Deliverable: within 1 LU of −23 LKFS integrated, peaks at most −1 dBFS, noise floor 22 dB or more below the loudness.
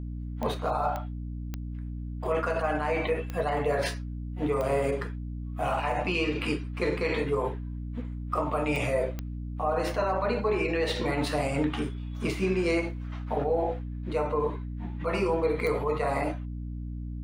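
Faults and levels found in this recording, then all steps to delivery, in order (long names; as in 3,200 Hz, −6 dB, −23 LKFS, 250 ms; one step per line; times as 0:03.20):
number of clicks 8; mains hum 60 Hz; hum harmonics up to 300 Hz; level of the hum −33 dBFS; integrated loudness −30.0 LKFS; sample peak −15.0 dBFS; target loudness −23.0 LKFS
→ click removal
mains-hum notches 60/120/180/240/300 Hz
level +7 dB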